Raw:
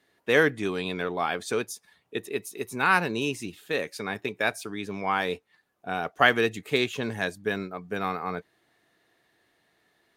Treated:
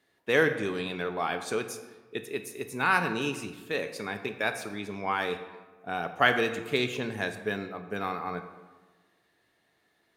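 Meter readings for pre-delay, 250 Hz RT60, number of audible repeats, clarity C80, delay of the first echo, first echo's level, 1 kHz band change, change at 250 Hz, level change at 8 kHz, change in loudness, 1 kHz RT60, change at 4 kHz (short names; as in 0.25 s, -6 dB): 16 ms, 1.3 s, none, 11.5 dB, none, none, -2.5 dB, -2.5 dB, -2.5 dB, -2.5 dB, 1.3 s, -2.5 dB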